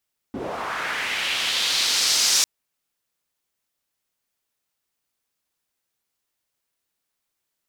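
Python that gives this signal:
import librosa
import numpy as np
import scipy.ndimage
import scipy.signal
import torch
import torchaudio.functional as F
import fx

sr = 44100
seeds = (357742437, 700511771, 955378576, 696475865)

y = fx.riser_noise(sr, seeds[0], length_s=2.1, colour='pink', kind='bandpass', start_hz=220.0, end_hz=5900.0, q=1.9, swell_db=13.0, law='linear')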